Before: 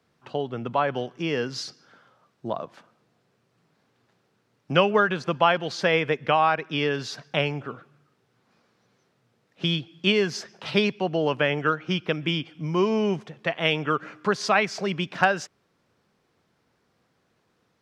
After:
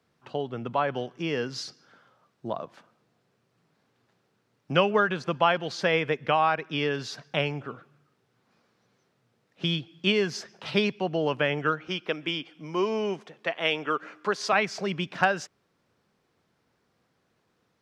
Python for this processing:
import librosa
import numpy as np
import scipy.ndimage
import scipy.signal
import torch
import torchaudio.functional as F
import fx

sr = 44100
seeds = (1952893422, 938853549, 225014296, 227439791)

y = fx.highpass(x, sr, hz=280.0, slope=12, at=(11.88, 14.53))
y = y * librosa.db_to_amplitude(-2.5)